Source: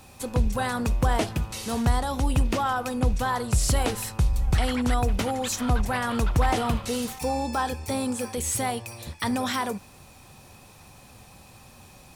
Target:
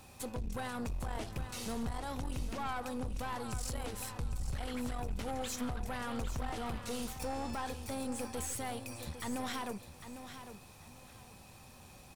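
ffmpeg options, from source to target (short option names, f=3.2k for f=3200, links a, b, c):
-af "alimiter=limit=-23dB:level=0:latency=1:release=281,aeval=exprs='(tanh(28.2*val(0)+0.55)-tanh(0.55))/28.2':c=same,aecho=1:1:802|1604|2406:0.299|0.0716|0.0172,volume=-3.5dB"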